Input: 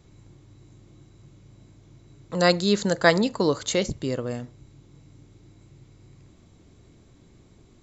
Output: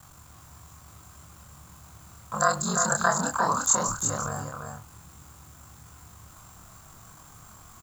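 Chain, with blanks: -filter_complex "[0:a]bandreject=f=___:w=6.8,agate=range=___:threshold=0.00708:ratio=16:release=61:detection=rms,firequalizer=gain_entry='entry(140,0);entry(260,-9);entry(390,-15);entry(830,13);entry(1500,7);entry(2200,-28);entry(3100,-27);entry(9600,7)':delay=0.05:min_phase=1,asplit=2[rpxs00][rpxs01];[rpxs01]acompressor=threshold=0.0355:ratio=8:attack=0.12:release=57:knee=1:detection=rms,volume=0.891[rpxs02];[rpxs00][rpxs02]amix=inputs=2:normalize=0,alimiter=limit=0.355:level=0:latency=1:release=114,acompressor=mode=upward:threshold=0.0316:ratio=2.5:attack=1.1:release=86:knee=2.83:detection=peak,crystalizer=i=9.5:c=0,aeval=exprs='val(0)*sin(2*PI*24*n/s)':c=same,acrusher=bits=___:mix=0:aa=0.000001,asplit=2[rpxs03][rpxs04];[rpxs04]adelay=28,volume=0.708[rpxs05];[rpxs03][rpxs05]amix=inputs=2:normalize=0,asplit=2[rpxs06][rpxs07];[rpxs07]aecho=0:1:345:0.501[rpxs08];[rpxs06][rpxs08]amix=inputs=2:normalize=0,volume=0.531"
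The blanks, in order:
880, 0.178, 7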